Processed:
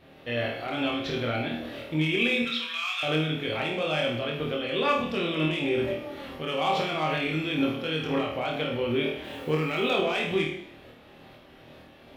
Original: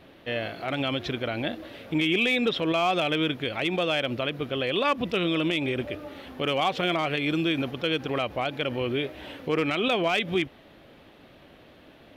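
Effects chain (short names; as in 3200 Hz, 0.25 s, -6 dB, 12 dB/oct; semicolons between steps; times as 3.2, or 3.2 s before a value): 2.42–3.03 inverse Chebyshev high-pass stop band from 310 Hz, stop band 70 dB; limiter -20 dBFS, peak gain reduction 4 dB; tremolo saw up 2.2 Hz, depth 45%; 9.24–9.91 requantised 10-bit, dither none; flutter echo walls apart 4.4 m, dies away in 0.39 s; plate-style reverb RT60 0.73 s, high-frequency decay 1×, DRR 2.5 dB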